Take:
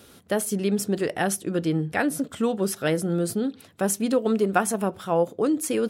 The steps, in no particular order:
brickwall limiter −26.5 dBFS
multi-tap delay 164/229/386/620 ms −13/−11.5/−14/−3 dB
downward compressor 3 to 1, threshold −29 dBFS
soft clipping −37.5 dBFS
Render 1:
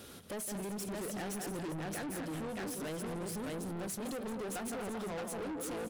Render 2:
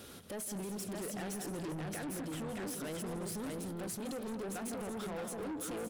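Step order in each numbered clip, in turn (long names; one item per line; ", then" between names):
multi-tap delay, then downward compressor, then soft clipping, then brickwall limiter
downward compressor, then brickwall limiter, then multi-tap delay, then soft clipping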